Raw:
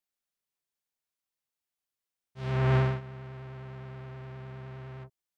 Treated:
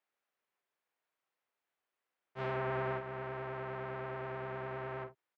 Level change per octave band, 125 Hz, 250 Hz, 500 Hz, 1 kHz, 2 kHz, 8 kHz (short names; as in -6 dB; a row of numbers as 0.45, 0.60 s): -14.5 dB, -8.5 dB, -1.0 dB, +0.5 dB, -1.5 dB, n/a